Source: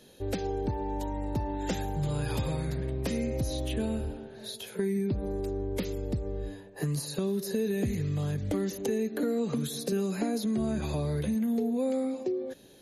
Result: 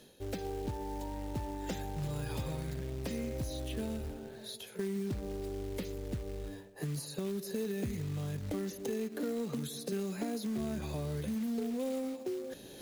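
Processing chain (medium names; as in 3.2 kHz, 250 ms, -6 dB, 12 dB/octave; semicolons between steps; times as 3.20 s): reverse; upward compressor, threshold -32 dBFS; reverse; short-mantissa float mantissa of 2-bit; trim -6.5 dB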